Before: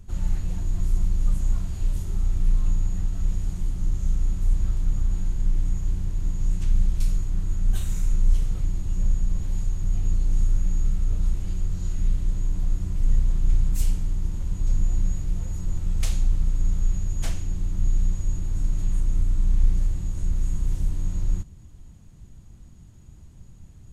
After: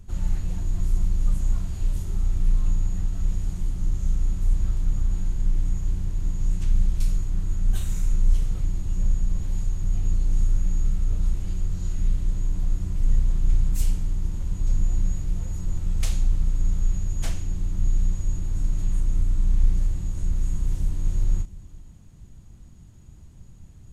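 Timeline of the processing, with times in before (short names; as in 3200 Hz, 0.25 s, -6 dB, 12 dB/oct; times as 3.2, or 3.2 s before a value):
20.69–21.1 echo throw 0.35 s, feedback 20%, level -6.5 dB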